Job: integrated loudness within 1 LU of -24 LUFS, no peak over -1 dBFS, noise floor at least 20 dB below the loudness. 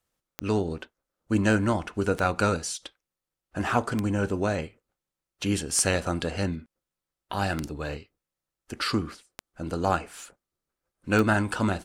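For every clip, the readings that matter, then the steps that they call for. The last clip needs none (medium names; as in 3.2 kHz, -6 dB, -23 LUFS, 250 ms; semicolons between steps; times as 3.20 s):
clicks found 7; loudness -27.5 LUFS; peak level -8.0 dBFS; loudness target -24.0 LUFS
-> de-click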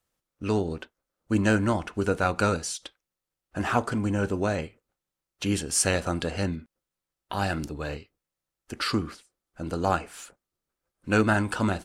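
clicks found 0; loudness -27.5 LUFS; peak level -8.0 dBFS; loudness target -24.0 LUFS
-> trim +3.5 dB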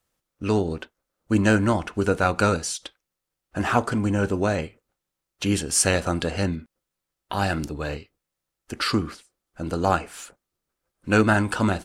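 loudness -24.0 LUFS; peak level -4.5 dBFS; noise floor -84 dBFS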